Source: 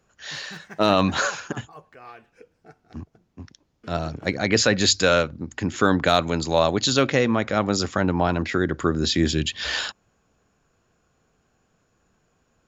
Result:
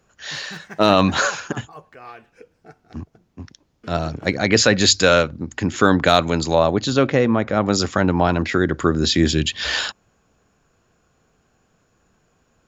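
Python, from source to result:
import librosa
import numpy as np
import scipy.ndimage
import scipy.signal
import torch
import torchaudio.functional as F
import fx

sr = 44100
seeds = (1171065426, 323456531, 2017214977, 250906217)

y = fx.high_shelf(x, sr, hz=2300.0, db=-11.0, at=(6.54, 7.65), fade=0.02)
y = y * 10.0 ** (4.0 / 20.0)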